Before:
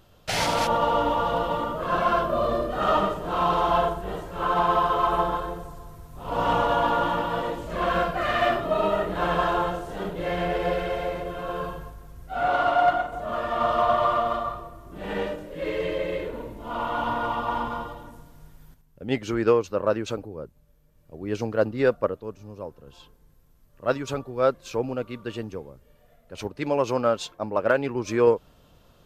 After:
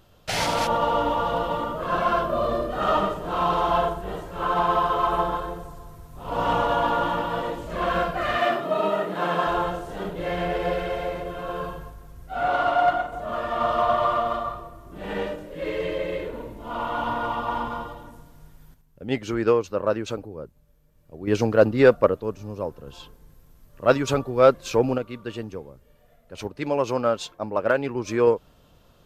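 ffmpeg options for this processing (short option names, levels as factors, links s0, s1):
-filter_complex "[0:a]asettb=1/sr,asplit=3[s0][s1][s2];[s0]atrim=end=8.384[s3];[s1]atrim=start=8.38:end=9.47,asetpts=PTS-STARTPTS,afade=t=in:d=0.004:c=qsin,afade=t=out:st=1.086:d=0.004:c=qsin,highpass=f=150:w=0.5412,highpass=f=150:w=1.3066[s4];[s2]atrim=start=9.466[s5];[s3][s4]acrossfade=d=0.004:c1=hsin:c2=qsin[s6];[s6][s5]acrossfade=d=0.004:c1=qsin:c2=hsin,asettb=1/sr,asplit=3[s7][s8][s9];[s7]atrim=end=21.274[s10];[s8]atrim=start=21.27:end=24.98,asetpts=PTS-STARTPTS,afade=t=in:d=0.004:c=qsin,afade=t=out:st=3.706:d=0.004:c=qsin,acontrast=75[s11];[s9]atrim=start=24.976[s12];[s10][s11]acrossfade=d=0.004:c1=hsin:c2=qsin[s13];[s13][s12]acrossfade=d=0.004:c1=qsin:c2=hsin"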